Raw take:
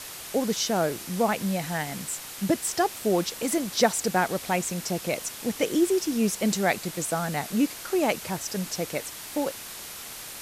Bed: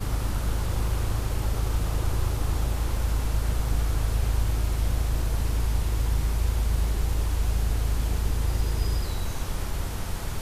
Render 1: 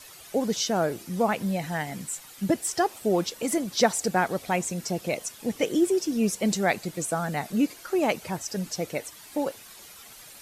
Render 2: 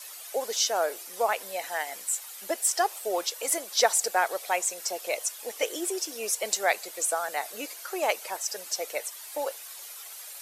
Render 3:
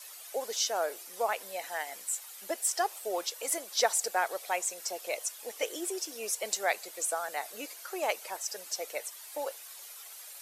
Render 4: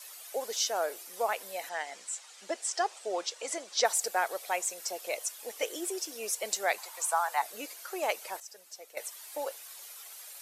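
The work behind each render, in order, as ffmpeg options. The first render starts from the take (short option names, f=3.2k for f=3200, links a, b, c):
-af "afftdn=nr=11:nf=-40"
-af "highpass=f=490:w=0.5412,highpass=f=490:w=1.3066,highshelf=f=6.8k:g=8"
-af "volume=-4.5dB"
-filter_complex "[0:a]asettb=1/sr,asplit=3[a][b][c];[a]atrim=end=1.694[d];[b]atrim=start=1.69:end=3.85,asetpts=PTS-STARTPTS,afade=t=in:d=0.004:c=qsin,afade=t=out:st=2.156:d=0.004:c=qsin,lowpass=f=7.7k:w=0.5412,lowpass=f=7.7k:w=1.3066[e];[c]atrim=start=3.846[f];[d][e]acrossfade=d=0.004:c1=hsin:c2=qsin[g];[g][f]acrossfade=d=0.004:c1=qsin:c2=hsin,asettb=1/sr,asplit=3[h][i][j];[h]atrim=end=6.784[k];[i]atrim=start=6.78:end=7.42,asetpts=PTS-STARTPTS,afade=t=in:d=0.004:c=qsin,afade=t=out:st=0.636:d=0.004:c=qsin,highpass=f=940:t=q:w=5.3[l];[j]atrim=start=7.416[m];[k][l]acrossfade=d=0.004:c1=hsin:c2=qsin[n];[n][m]acrossfade=d=0.004:c1=qsin:c2=hsin,asplit=3[o][p][q];[o]atrim=end=8.402[r];[p]atrim=start=8.398:end=8.972,asetpts=PTS-STARTPTS,volume=-11.5dB[s];[q]atrim=start=8.968[t];[r][s]acrossfade=d=0.004:c1=hsin:c2=hsin[u];[u][t]acrossfade=d=0.004:c1=hsin:c2=hsin"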